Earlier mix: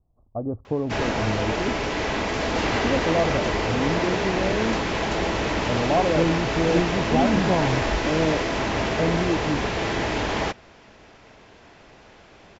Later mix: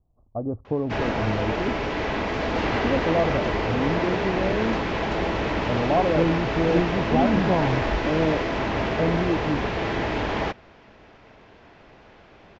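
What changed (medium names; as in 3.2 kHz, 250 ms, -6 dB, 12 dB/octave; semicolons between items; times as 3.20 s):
background: add distance through air 120 m; master: add treble shelf 6.4 kHz -6 dB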